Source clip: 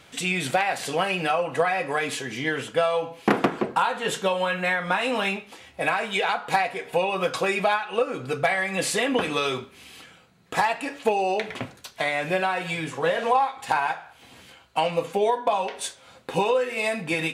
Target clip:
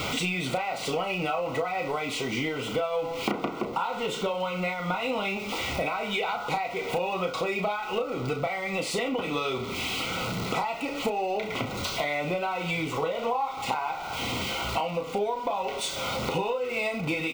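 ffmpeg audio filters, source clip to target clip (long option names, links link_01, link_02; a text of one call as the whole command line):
ffmpeg -i in.wav -filter_complex "[0:a]aeval=exprs='val(0)+0.5*0.0251*sgn(val(0))':channel_layout=same,equalizer=frequency=11000:width=0.64:gain=-12,acompressor=threshold=-35dB:ratio=6,asuperstop=centerf=1700:order=12:qfactor=4.3,asplit=2[link_01][link_02];[link_02]adelay=34,volume=-8dB[link_03];[link_01][link_03]amix=inputs=2:normalize=0,volume=7.5dB" out.wav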